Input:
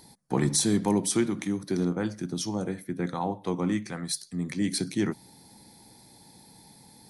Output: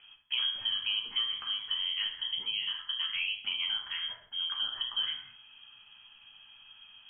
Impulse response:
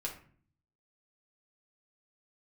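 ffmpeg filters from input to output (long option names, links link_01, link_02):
-filter_complex "[0:a]lowpass=frequency=2900:width_type=q:width=0.5098,lowpass=frequency=2900:width_type=q:width=0.6013,lowpass=frequency=2900:width_type=q:width=0.9,lowpass=frequency=2900:width_type=q:width=2.563,afreqshift=-3400[link_01];[1:a]atrim=start_sample=2205,afade=type=out:start_time=0.32:duration=0.01,atrim=end_sample=14553,asetrate=35721,aresample=44100[link_02];[link_01][link_02]afir=irnorm=-1:irlink=0,acrossover=split=800|1700[link_03][link_04][link_05];[link_03]acompressor=threshold=-59dB:ratio=4[link_06];[link_04]acompressor=threshold=-50dB:ratio=4[link_07];[link_05]acompressor=threshold=-31dB:ratio=4[link_08];[link_06][link_07][link_08]amix=inputs=3:normalize=0"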